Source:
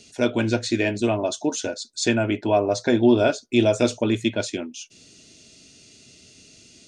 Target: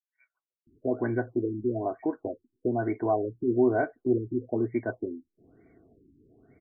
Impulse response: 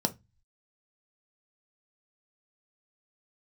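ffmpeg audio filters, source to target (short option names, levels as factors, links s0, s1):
-filter_complex "[0:a]aecho=1:1:2.8:0.35,asplit=2[s0][s1];[s1]acompressor=threshold=0.0398:ratio=6,volume=1.12[s2];[s0][s2]amix=inputs=2:normalize=0,asetrate=45938,aresample=44100,acrossover=split=3800[s3][s4];[s3]adelay=670[s5];[s5][s4]amix=inputs=2:normalize=0,afftfilt=real='re*lt(b*sr/1024,380*pow(2400/380,0.5+0.5*sin(2*PI*1.1*pts/sr)))':imag='im*lt(b*sr/1024,380*pow(2400/380,0.5+0.5*sin(2*PI*1.1*pts/sr)))':win_size=1024:overlap=0.75,volume=0.355"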